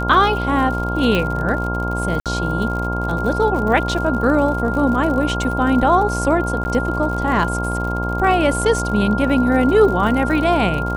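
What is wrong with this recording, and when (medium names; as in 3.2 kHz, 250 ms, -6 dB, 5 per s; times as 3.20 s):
buzz 60 Hz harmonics 18 -23 dBFS
crackle 66 per s -26 dBFS
whine 1.4 kHz -24 dBFS
1.15 s: pop -7 dBFS
2.20–2.26 s: dropout 57 ms
6.64–6.65 s: dropout 10 ms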